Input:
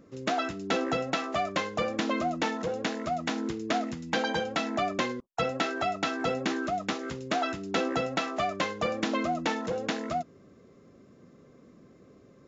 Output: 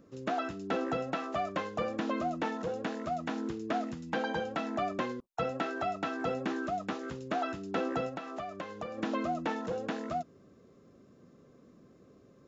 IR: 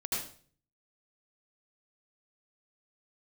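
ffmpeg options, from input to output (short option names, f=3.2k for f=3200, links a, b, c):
-filter_complex "[0:a]acrossover=split=2600[a][b];[b]acompressor=threshold=-48dB:ratio=4:attack=1:release=60[c];[a][c]amix=inputs=2:normalize=0,equalizer=f=2.1k:w=5:g=-5,asplit=3[d][e][f];[d]afade=t=out:st=8.09:d=0.02[g];[e]acompressor=threshold=-33dB:ratio=6,afade=t=in:st=8.09:d=0.02,afade=t=out:st=8.97:d=0.02[h];[f]afade=t=in:st=8.97:d=0.02[i];[g][h][i]amix=inputs=3:normalize=0,volume=-3.5dB"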